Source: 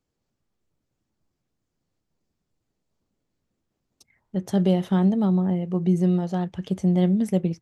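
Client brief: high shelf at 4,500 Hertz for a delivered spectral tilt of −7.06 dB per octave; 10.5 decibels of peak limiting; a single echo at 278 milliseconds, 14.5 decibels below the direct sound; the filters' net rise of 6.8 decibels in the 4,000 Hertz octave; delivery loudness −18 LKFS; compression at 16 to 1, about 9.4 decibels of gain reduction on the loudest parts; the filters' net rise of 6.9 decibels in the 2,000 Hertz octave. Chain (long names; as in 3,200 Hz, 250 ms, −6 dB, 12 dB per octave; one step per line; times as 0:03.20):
parametric band 2,000 Hz +7 dB
parametric band 4,000 Hz +4.5 dB
high-shelf EQ 4,500 Hz +3.5 dB
downward compressor 16 to 1, threshold −25 dBFS
brickwall limiter −26.5 dBFS
single-tap delay 278 ms −14.5 dB
level +16.5 dB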